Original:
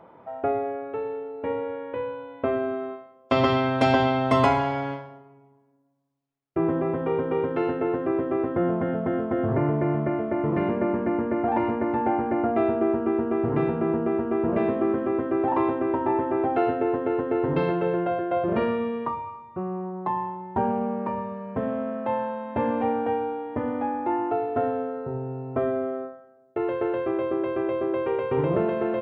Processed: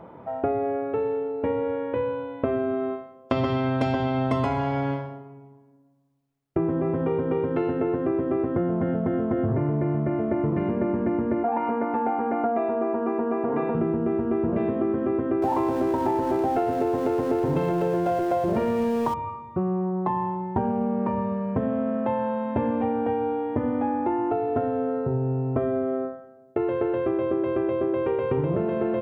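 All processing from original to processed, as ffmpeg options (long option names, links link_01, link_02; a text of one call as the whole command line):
ffmpeg -i in.wav -filter_complex "[0:a]asettb=1/sr,asplit=3[link_01][link_02][link_03];[link_01]atrim=end=11.434[link_04];[link_02]atrim=start=11.43:end=13.75,asetpts=PTS-STARTPTS,afade=type=in:duration=0.004:curve=qsin,afade=type=out:start_time=2.316:duration=0.004:curve=qsin,bandpass=frequency=940:width_type=q:width=0.76,aecho=1:1:4.2:0.72,atrim=end_sample=102312[link_05];[link_03]atrim=start=13.746[link_06];[link_04][link_05]acrossfade=duration=0.004:curve1=hsin:curve2=qsin[link_07];[link_07][link_06]acrossfade=duration=0.004:curve1=qsin:curve2=hsin,asettb=1/sr,asplit=3[link_08][link_09][link_10];[link_08]atrim=end=15.424[link_11];[link_09]atrim=start=15.42:end=19.14,asetpts=PTS-STARTPTS,afade=type=in:duration=0.004:curve=qsin,afade=type=out:start_time=3.716:duration=0.004:curve=qsin,aeval=exprs='val(0)+0.5*0.0237*sgn(val(0))':channel_layout=same,equalizer=frequency=790:width=1.2:gain=5.5,bandreject=frequency=1200:width=19[link_12];[link_10]atrim=start=19.136[link_13];[link_11][link_12]acrossfade=duration=0.004:curve1=hsin:curve2=qsin[link_14];[link_14][link_13]acrossfade=duration=0.004:curve1=qsin:curve2=hsin,lowshelf=frequency=370:gain=9,acompressor=threshold=-24dB:ratio=6,volume=2.5dB" out.wav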